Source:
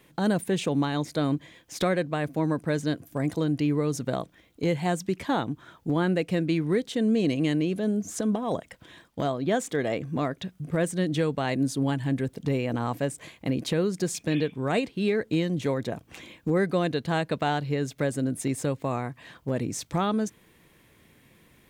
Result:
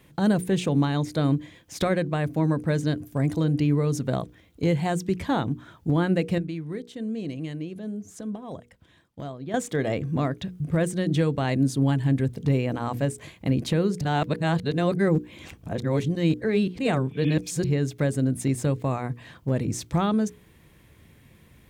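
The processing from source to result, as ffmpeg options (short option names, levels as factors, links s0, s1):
-filter_complex "[0:a]asplit=5[s0][s1][s2][s3][s4];[s0]atrim=end=6.382[s5];[s1]atrim=start=6.378:end=9.542,asetpts=PTS-STARTPTS,volume=0.299[s6];[s2]atrim=start=9.538:end=14.012[s7];[s3]atrim=start=14.008:end=17.642,asetpts=PTS-STARTPTS,areverse[s8];[s4]atrim=start=17.638[s9];[s5][s6]acrossfade=d=0.004:c1=hsin:c2=hsin[s10];[s10][s7]acrossfade=d=0.004:c1=hsin:c2=hsin[s11];[s11][s8]acrossfade=d=0.004:c1=hsin:c2=hsin[s12];[s12][s9]acrossfade=d=0.004:c1=hsin:c2=hsin,equalizer=f=66:w=0.49:g=11.5,bandreject=f=60:t=h:w=6,bandreject=f=120:t=h:w=6,bandreject=f=180:t=h:w=6,bandreject=f=240:t=h:w=6,bandreject=f=300:t=h:w=6,bandreject=f=360:t=h:w=6,bandreject=f=420:t=h:w=6,bandreject=f=480:t=h:w=6"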